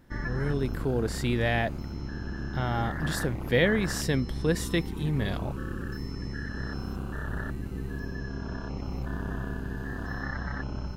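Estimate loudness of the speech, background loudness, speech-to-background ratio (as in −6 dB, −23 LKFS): −29.5 LKFS, −35.5 LKFS, 6.0 dB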